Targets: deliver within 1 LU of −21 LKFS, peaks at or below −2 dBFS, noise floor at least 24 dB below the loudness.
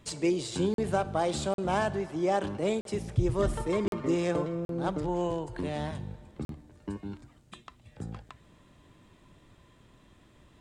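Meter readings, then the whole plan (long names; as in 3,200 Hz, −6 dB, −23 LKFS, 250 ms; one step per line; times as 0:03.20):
number of dropouts 6; longest dropout 42 ms; integrated loudness −31.0 LKFS; sample peak −14.5 dBFS; target loudness −21.0 LKFS
→ repair the gap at 0:00.74/0:01.54/0:02.81/0:03.88/0:04.65/0:06.45, 42 ms
level +10 dB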